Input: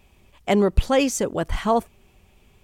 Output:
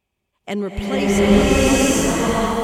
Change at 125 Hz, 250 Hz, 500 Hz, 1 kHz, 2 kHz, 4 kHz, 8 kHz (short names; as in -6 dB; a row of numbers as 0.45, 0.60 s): +6.0, +8.0, +4.5, +3.0, +9.0, +8.5, +9.0 dB